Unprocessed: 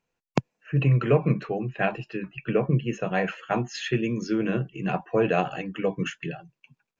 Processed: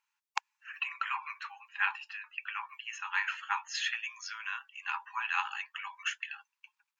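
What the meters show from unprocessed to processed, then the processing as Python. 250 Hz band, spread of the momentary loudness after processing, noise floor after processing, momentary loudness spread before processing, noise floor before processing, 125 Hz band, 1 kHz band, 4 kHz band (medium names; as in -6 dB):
under -40 dB, 10 LU, under -85 dBFS, 9 LU, -84 dBFS, under -40 dB, -5.0 dB, 0.0 dB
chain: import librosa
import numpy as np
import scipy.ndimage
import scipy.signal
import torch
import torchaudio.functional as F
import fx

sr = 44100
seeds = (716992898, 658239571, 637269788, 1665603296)

y = fx.brickwall_highpass(x, sr, low_hz=810.0)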